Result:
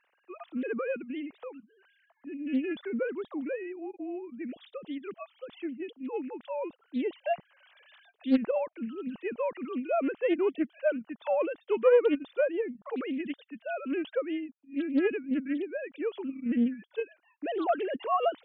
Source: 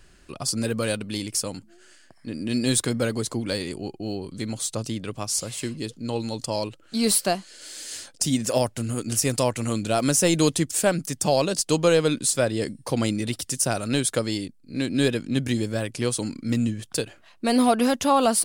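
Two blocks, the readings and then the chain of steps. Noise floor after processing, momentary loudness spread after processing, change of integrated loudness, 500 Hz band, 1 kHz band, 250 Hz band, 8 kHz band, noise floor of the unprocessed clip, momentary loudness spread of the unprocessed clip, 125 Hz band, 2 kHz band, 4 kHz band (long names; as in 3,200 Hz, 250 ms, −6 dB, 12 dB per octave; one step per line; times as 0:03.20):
−73 dBFS, 12 LU, −7.0 dB, −4.0 dB, −7.5 dB, −6.5 dB, below −40 dB, −55 dBFS, 12 LU, below −25 dB, −7.5 dB, −20.5 dB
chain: three sine waves on the formant tracks
highs frequency-modulated by the lows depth 0.32 ms
level −6.5 dB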